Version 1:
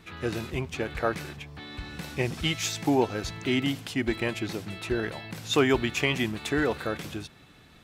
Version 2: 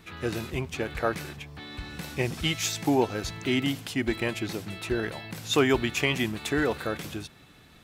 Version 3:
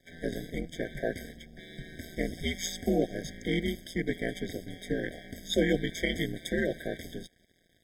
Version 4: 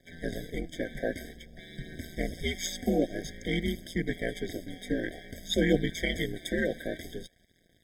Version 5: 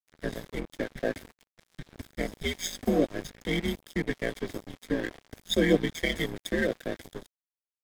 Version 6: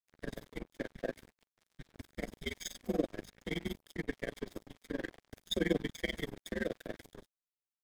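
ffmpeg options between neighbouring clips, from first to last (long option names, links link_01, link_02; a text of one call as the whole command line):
ffmpeg -i in.wav -af "highshelf=frequency=9600:gain=6" out.wav
ffmpeg -i in.wav -af "aeval=exprs='val(0)*sin(2*PI*86*n/s)':channel_layout=same,aeval=exprs='sgn(val(0))*max(abs(val(0))-0.00178,0)':channel_layout=same,afftfilt=real='re*eq(mod(floor(b*sr/1024/770),2),0)':imag='im*eq(mod(floor(b*sr/1024/770),2),0)':win_size=1024:overlap=0.75" out.wav
ffmpeg -i in.wav -af "aphaser=in_gain=1:out_gain=1:delay=4.2:decay=0.34:speed=0.52:type=triangular" out.wav
ffmpeg -i in.wav -filter_complex "[0:a]acrossover=split=170|800|1900[link_01][link_02][link_03][link_04];[link_01]alimiter=level_in=7.5dB:limit=-24dB:level=0:latency=1:release=299,volume=-7.5dB[link_05];[link_05][link_02][link_03][link_04]amix=inputs=4:normalize=0,aeval=exprs='sgn(val(0))*max(abs(val(0))-0.00944,0)':channel_layout=same,volume=3.5dB" out.wav
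ffmpeg -i in.wav -af "tremolo=f=21:d=0.974,volume=-5dB" out.wav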